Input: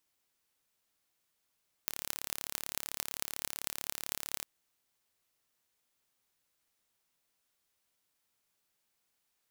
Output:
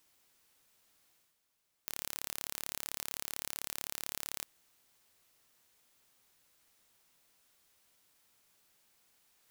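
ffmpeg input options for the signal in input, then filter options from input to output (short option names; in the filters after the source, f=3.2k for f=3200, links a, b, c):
-f lavfi -i "aevalsrc='0.562*eq(mod(n,1235),0)*(0.5+0.5*eq(mod(n,9880),0))':d=2.57:s=44100"
-af "areverse,acompressor=mode=upward:threshold=-60dB:ratio=2.5,areverse,asoftclip=type=hard:threshold=-11dB"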